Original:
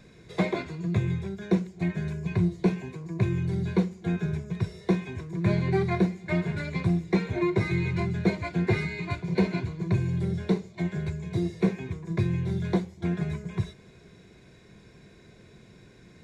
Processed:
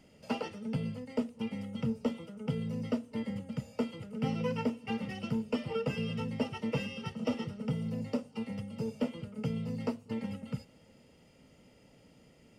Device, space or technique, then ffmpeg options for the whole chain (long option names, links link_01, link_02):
nightcore: -af "asetrate=56889,aresample=44100,volume=-8dB"